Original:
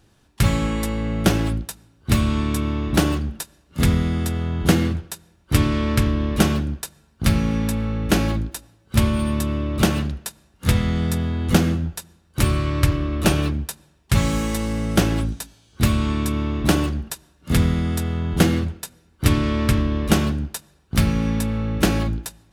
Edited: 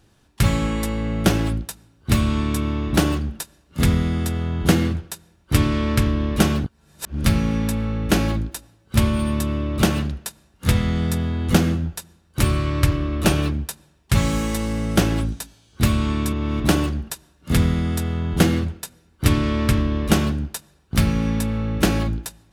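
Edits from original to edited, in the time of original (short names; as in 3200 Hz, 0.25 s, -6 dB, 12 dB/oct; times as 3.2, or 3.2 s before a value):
6.64–7.24 reverse
16.33–16.6 reverse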